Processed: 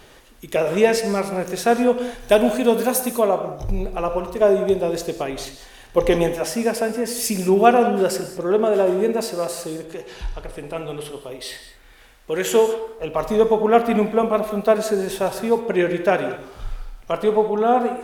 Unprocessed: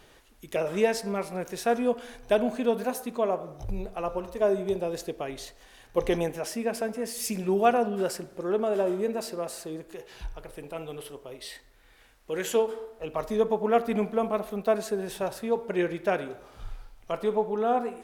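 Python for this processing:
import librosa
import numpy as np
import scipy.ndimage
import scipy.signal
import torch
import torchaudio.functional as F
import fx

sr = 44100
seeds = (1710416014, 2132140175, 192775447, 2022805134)

y = fx.high_shelf(x, sr, hz=5400.0, db=10.0, at=(2.2, 3.19))
y = fx.lowpass(y, sr, hz=11000.0, slope=12, at=(9.79, 11.21))
y = fx.rev_gated(y, sr, seeds[0], gate_ms=230, shape='flat', drr_db=8.5)
y = y * librosa.db_to_amplitude(8.0)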